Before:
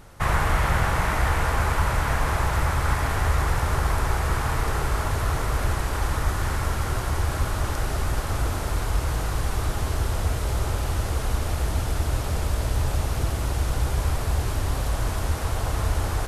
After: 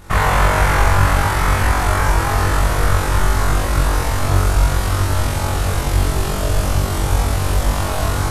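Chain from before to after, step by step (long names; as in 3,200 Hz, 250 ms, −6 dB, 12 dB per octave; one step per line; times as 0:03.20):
flutter between parallel walls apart 7.3 metres, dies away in 1.4 s
time stretch by overlap-add 0.51×, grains 45 ms
level +5.5 dB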